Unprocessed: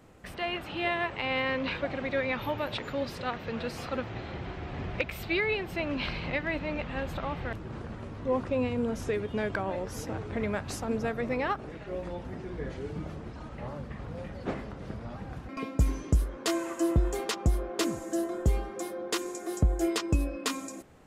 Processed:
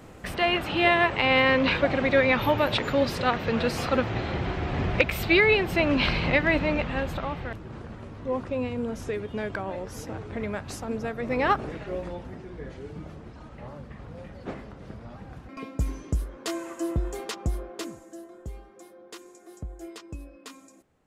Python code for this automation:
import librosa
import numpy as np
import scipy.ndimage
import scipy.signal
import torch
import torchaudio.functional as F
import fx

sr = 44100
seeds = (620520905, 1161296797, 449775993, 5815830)

y = fx.gain(x, sr, db=fx.line((6.6, 9.0), (7.58, -0.5), (11.19, -0.5), (11.53, 8.5), (12.47, -2.5), (17.59, -2.5), (18.19, -13.0)))